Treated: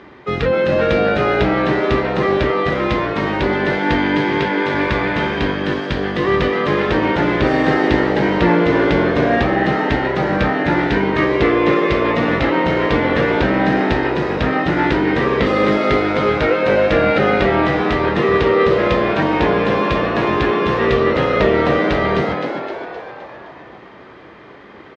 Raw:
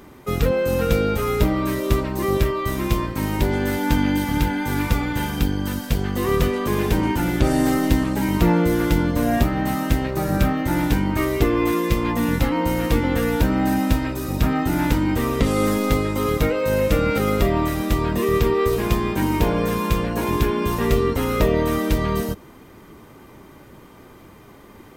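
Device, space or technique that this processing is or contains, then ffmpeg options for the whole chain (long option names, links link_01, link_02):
frequency-shifting delay pedal into a guitar cabinet: -filter_complex "[0:a]asettb=1/sr,asplit=3[link_01][link_02][link_03];[link_01]atrim=end=4.184[link_04];[link_02]atrim=start=4.18:end=4.74,asetpts=PTS-STARTPTS,afade=type=in:duration=0.004:curve=qsin,afade=type=out:start_time=0.556:duration=0.004:curve=qsin,highpass=120[link_05];[link_03]atrim=start=4.736[link_06];[link_04][link_05]acrossfade=duration=0.004:curve1=hsin:curve2=qsin[link_07];[link_07][link_06]acrossfade=duration=0.004:curve1=qsin:curve2=hsin,asplit=8[link_08][link_09][link_10][link_11][link_12][link_13][link_14][link_15];[link_09]adelay=259,afreqshift=100,volume=-6dB[link_16];[link_10]adelay=518,afreqshift=200,volume=-11dB[link_17];[link_11]adelay=777,afreqshift=300,volume=-16.1dB[link_18];[link_12]adelay=1036,afreqshift=400,volume=-21.1dB[link_19];[link_13]adelay=1295,afreqshift=500,volume=-26.1dB[link_20];[link_14]adelay=1554,afreqshift=600,volume=-31.2dB[link_21];[link_15]adelay=1813,afreqshift=700,volume=-36.2dB[link_22];[link_08][link_16][link_17][link_18][link_19][link_20][link_21][link_22]amix=inputs=8:normalize=0,highpass=93,equalizer=frequency=97:width_type=q:width=4:gain=-8,equalizer=frequency=160:width_type=q:width=4:gain=-6,equalizer=frequency=250:width_type=q:width=4:gain=-6,equalizer=frequency=1800:width_type=q:width=4:gain=6,lowpass=frequency=4200:width=0.5412,lowpass=frequency=4200:width=1.3066,volume=5dB"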